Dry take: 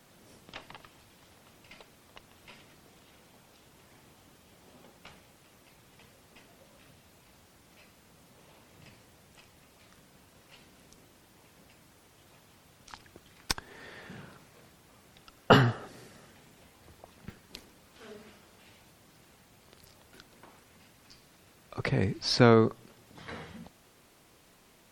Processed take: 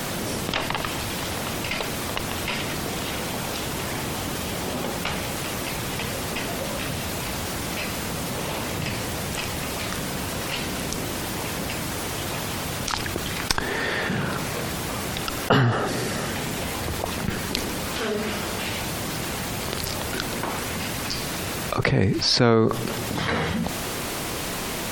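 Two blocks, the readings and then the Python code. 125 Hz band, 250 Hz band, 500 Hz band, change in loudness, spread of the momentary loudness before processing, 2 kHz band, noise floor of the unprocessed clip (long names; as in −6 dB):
+8.5 dB, +8.5 dB, +6.5 dB, +0.5 dB, 23 LU, +12.5 dB, −61 dBFS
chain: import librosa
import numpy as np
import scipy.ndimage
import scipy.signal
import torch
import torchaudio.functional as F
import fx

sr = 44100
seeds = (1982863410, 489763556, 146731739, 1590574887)

y = fx.env_flatten(x, sr, amount_pct=70)
y = F.gain(torch.from_numpy(y), -1.0).numpy()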